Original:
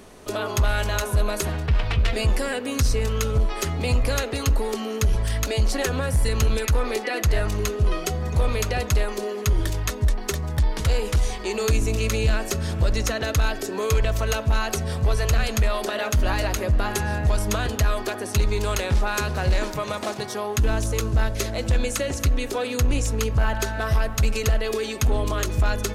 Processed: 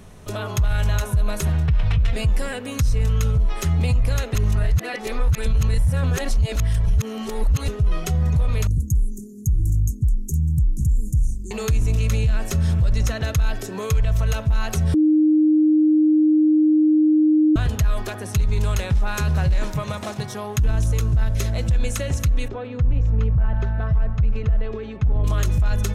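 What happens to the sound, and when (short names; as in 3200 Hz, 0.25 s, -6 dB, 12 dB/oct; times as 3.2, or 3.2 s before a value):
4.35–7.68 reverse
8.67–11.51 Chebyshev band-stop 320–6700 Hz, order 4
14.94–17.56 bleep 308 Hz -7.5 dBFS
22.48–25.24 tape spacing loss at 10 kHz 39 dB
whole clip: resonant low shelf 210 Hz +9.5 dB, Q 1.5; notch 4600 Hz, Q 12; limiter -10.5 dBFS; gain -2 dB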